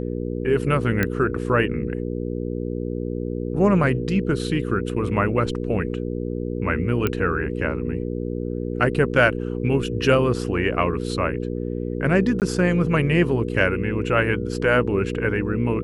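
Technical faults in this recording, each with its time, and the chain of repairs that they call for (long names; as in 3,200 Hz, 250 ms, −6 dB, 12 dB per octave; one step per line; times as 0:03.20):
mains hum 60 Hz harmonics 8 −27 dBFS
0:01.03: click −8 dBFS
0:07.07: click −9 dBFS
0:12.40–0:12.42: drop-out 18 ms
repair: click removal
hum removal 60 Hz, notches 8
repair the gap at 0:12.40, 18 ms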